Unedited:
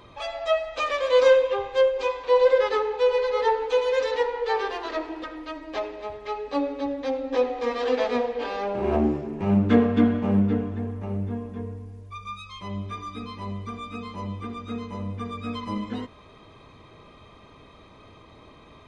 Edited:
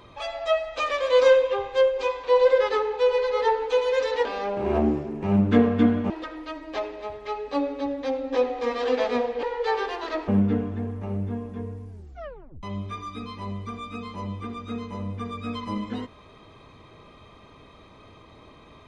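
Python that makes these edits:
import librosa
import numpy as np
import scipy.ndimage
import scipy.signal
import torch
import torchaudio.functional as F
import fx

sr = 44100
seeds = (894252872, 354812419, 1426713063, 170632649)

y = fx.edit(x, sr, fx.swap(start_s=4.25, length_s=0.85, other_s=8.43, other_length_s=1.85),
    fx.tape_stop(start_s=11.89, length_s=0.74), tone=tone)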